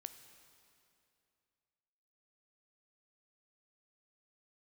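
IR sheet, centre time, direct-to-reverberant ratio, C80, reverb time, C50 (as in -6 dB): 23 ms, 9.0 dB, 11.0 dB, 2.6 s, 10.0 dB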